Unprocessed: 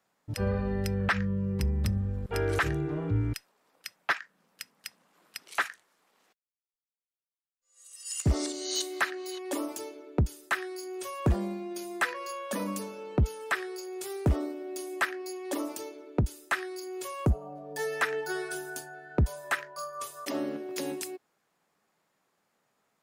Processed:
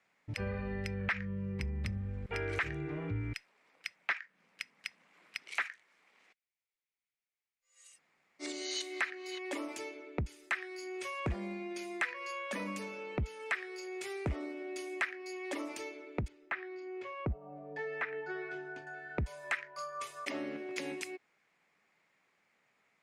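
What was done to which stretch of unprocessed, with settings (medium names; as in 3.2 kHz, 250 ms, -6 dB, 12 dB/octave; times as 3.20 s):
7.94–8.44 s: room tone, crossfade 0.10 s
16.28–18.87 s: tape spacing loss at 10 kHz 36 dB
whole clip: low-pass 7.5 kHz 12 dB/octave; peaking EQ 2.2 kHz +13.5 dB 0.68 oct; compression 2:1, threshold -35 dBFS; trim -3 dB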